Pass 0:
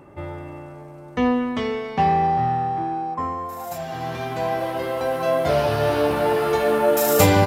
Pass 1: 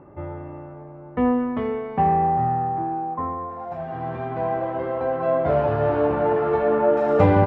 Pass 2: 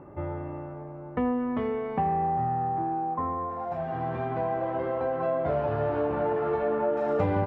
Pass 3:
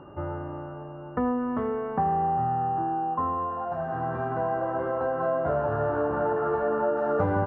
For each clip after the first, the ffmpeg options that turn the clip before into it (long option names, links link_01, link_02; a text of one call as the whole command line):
ffmpeg -i in.wav -af "lowpass=1500,aemphasis=mode=reproduction:type=50kf" out.wav
ffmpeg -i in.wav -af "acompressor=threshold=-27dB:ratio=2.5" out.wav
ffmpeg -i in.wav -af "aeval=exprs='val(0)+0.00251*sin(2*PI*2800*n/s)':channel_layout=same,highshelf=frequency=1900:width_type=q:width=3:gain=-8" out.wav